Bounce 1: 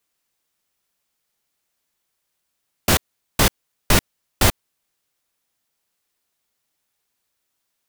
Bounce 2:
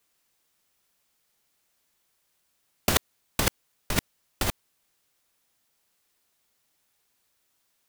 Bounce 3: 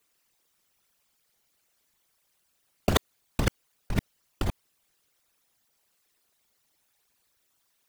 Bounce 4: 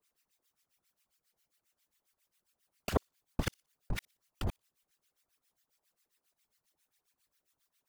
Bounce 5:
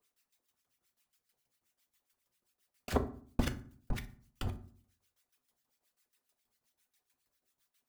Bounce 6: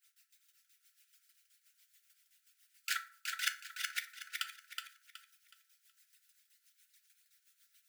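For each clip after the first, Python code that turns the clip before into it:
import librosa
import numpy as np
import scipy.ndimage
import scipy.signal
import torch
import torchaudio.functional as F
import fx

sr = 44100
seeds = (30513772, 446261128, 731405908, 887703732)

y1 = fx.over_compress(x, sr, threshold_db=-19.0, ratio=-0.5)
y1 = F.gain(torch.from_numpy(y1), -3.0).numpy()
y2 = fx.envelope_sharpen(y1, sr, power=2.0)
y3 = fx.harmonic_tremolo(y2, sr, hz=7.4, depth_pct=100, crossover_hz=1200.0)
y3 = fx.echo_wet_highpass(y3, sr, ms=60, feedback_pct=31, hz=4500.0, wet_db=-22.0)
y3 = F.gain(torch.from_numpy(y3), -2.5).numpy()
y4 = fx.tremolo_shape(y3, sr, shape='saw_down', hz=6.2, depth_pct=75)
y4 = fx.rev_fdn(y4, sr, rt60_s=0.47, lf_ratio=1.4, hf_ratio=0.6, size_ms=24.0, drr_db=6.0)
y4 = F.gain(torch.from_numpy(y4), 2.0).numpy()
y5 = fx.brickwall_highpass(y4, sr, low_hz=1300.0)
y5 = fx.echo_feedback(y5, sr, ms=371, feedback_pct=30, wet_db=-4.5)
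y5 = F.gain(torch.from_numpy(y5), 8.5).numpy()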